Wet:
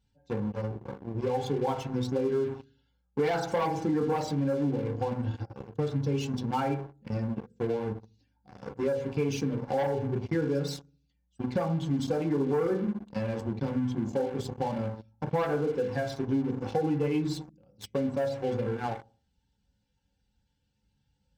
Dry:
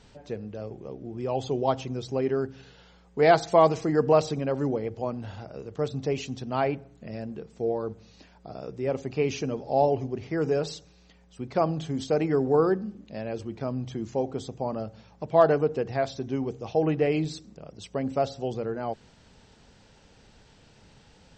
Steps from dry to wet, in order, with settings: per-bin expansion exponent 1.5; reverb RT60 0.45 s, pre-delay 3 ms, DRR 1 dB; sample leveller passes 3; compressor 6:1, threshold -26 dBFS, peak gain reduction 16.5 dB; notch comb 630 Hz

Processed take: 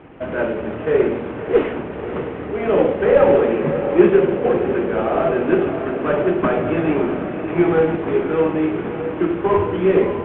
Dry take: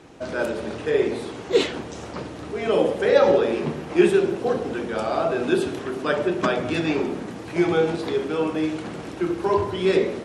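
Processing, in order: CVSD 16 kbps; air absorption 380 m; diffused feedback echo 0.609 s, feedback 61%, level -9.5 dB; gain +6 dB

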